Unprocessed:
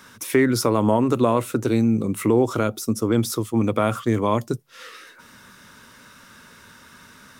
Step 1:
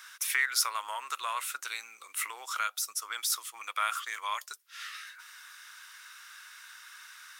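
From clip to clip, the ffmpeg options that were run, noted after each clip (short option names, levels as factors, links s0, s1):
-af "highpass=f=1300:w=0.5412,highpass=f=1300:w=1.3066"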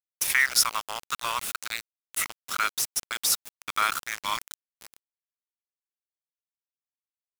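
-af "lowshelf=f=400:g=-7.5,aeval=exprs='val(0)*gte(abs(val(0)),0.0237)':c=same,volume=2.11"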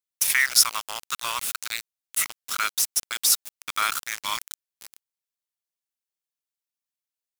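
-af "highshelf=f=2300:g=7.5,volume=0.75"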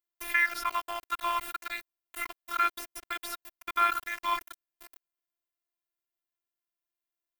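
-filter_complex "[0:a]acrossover=split=2700[s0][s1];[s1]acompressor=threshold=0.02:ratio=4:attack=1:release=60[s2];[s0][s2]amix=inputs=2:normalize=0,afftfilt=real='hypot(re,im)*cos(PI*b)':imag='0':win_size=512:overlap=0.75,equalizer=f=6600:t=o:w=2.1:g=-12.5,volume=1.88"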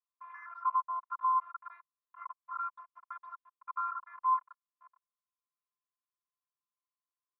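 -af "asoftclip=type=tanh:threshold=0.0473,asuperpass=centerf=1100:order=4:qfactor=4.2,volume=2"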